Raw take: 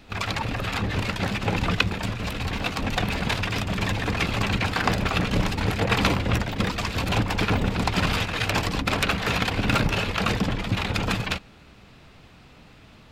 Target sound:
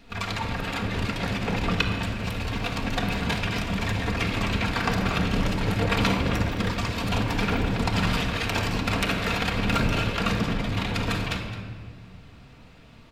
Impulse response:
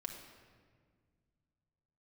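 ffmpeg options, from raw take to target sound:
-filter_complex "[0:a]aecho=1:1:215:0.188[s0];[1:a]atrim=start_sample=2205[s1];[s0][s1]afir=irnorm=-1:irlink=0"

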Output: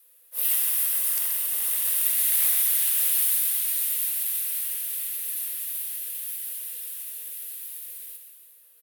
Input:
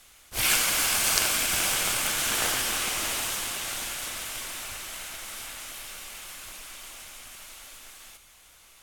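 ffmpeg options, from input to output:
-filter_complex "[0:a]acrossover=split=500|1300[s0][s1][s2];[s2]dynaudnorm=f=130:g=9:m=3.35[s3];[s0][s1][s3]amix=inputs=3:normalize=0,asplit=2[s4][s5];[s5]adelay=128.3,volume=0.447,highshelf=f=4000:g=-2.89[s6];[s4][s6]amix=inputs=2:normalize=0,afreqshift=470,aexciter=amount=13.4:drive=1.4:freq=9600,volume=0.15"

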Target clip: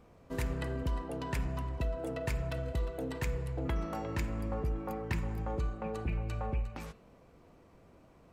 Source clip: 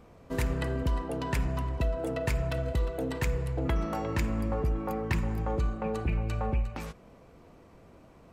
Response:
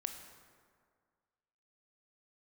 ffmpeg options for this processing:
-af "bandreject=f=222.1:t=h:w=4,bandreject=f=444.2:t=h:w=4,bandreject=f=666.3:t=h:w=4,bandreject=f=888.4:t=h:w=4,bandreject=f=1110.5:t=h:w=4,bandreject=f=1332.6:t=h:w=4,bandreject=f=1554.7:t=h:w=4,bandreject=f=1776.8:t=h:w=4,bandreject=f=1998.9:t=h:w=4,bandreject=f=2221:t=h:w=4,bandreject=f=2443.1:t=h:w=4,bandreject=f=2665.2:t=h:w=4,bandreject=f=2887.3:t=h:w=4,bandreject=f=3109.4:t=h:w=4,bandreject=f=3331.5:t=h:w=4,bandreject=f=3553.6:t=h:w=4,bandreject=f=3775.7:t=h:w=4,bandreject=f=3997.8:t=h:w=4,bandreject=f=4219.9:t=h:w=4,bandreject=f=4442:t=h:w=4,volume=0.562"

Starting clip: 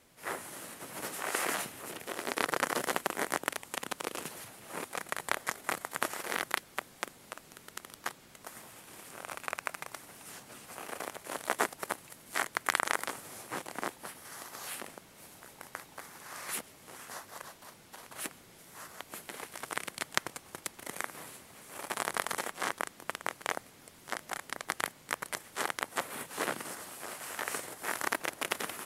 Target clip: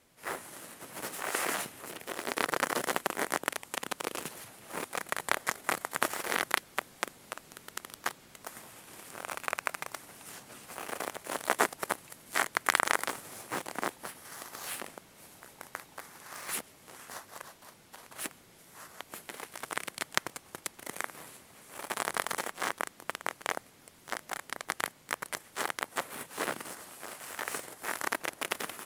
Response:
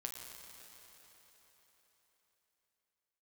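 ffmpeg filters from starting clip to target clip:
-filter_complex "[0:a]dynaudnorm=f=600:g=17:m=1.78,asplit=2[s0][s1];[s1]acrusher=bits=5:mix=0:aa=0.000001,volume=0.398[s2];[s0][s2]amix=inputs=2:normalize=0,volume=0.75"

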